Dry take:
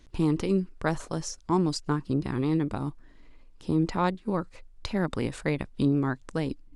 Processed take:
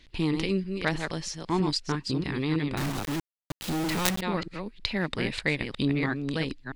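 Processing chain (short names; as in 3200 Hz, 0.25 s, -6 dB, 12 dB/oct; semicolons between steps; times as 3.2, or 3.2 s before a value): reverse delay 0.32 s, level -6 dB; band shelf 2900 Hz +11 dB; 2.77–4.21 companded quantiser 2-bit; gain -2.5 dB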